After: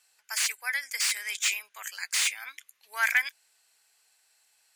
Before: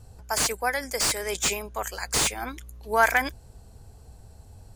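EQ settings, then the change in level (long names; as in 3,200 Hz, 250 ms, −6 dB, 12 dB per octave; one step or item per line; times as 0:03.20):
high-pass with resonance 2,100 Hz, resonance Q 2.1
−3.5 dB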